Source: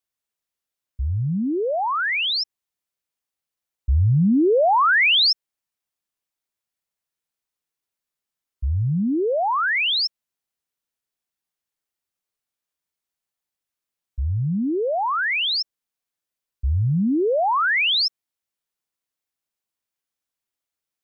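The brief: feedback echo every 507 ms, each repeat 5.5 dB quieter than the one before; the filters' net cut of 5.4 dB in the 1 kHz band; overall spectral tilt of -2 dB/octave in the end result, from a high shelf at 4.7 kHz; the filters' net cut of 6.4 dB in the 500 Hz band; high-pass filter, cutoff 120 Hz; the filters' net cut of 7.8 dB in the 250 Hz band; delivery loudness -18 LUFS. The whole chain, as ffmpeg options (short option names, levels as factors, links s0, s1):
-af "highpass=120,equalizer=f=250:t=o:g=-9,equalizer=f=500:t=o:g=-4,equalizer=f=1000:t=o:g=-5,highshelf=f=4700:g=-5,aecho=1:1:507|1014|1521|2028|2535|3042|3549:0.531|0.281|0.149|0.079|0.0419|0.0222|0.0118,volume=2.11"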